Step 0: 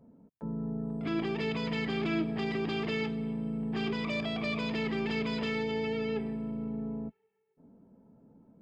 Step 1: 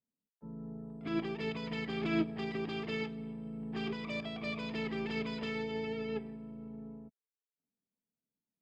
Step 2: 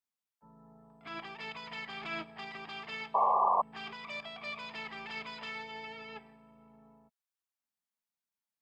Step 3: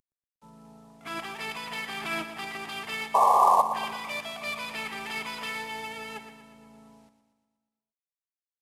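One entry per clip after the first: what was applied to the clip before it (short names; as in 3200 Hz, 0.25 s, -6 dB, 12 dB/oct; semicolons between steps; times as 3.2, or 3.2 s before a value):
upward expander 2.5:1, over -54 dBFS; gain +1.5 dB
painted sound noise, 3.14–3.62, 370–1200 Hz -27 dBFS; resonant low shelf 570 Hz -13.5 dB, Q 1.5
CVSD 64 kbps; feedback echo 0.119 s, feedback 58%, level -11 dB; gain +7 dB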